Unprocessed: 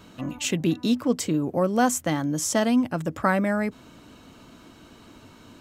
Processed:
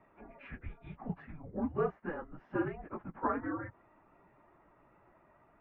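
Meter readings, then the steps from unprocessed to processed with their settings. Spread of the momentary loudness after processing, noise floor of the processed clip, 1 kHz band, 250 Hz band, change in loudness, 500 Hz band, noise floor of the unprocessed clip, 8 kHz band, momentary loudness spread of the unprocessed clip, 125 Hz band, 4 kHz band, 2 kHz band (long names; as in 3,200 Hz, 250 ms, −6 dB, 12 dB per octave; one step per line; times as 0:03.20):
14 LU, −66 dBFS, −12.0 dB, −16.5 dB, −14.5 dB, −12.0 dB, −50 dBFS, below −40 dB, 6 LU, −14.5 dB, below −30 dB, −15.0 dB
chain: random phases in long frames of 50 ms
high-pass filter 280 Hz
single-sideband voice off tune −310 Hz 440–2,200 Hz
level −9 dB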